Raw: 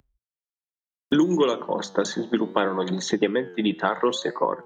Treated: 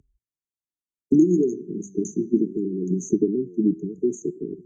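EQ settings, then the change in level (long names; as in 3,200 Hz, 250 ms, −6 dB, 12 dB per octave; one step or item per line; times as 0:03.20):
linear-phase brick-wall band-stop 430–5,900 Hz
high-frequency loss of the air 70 metres
+3.5 dB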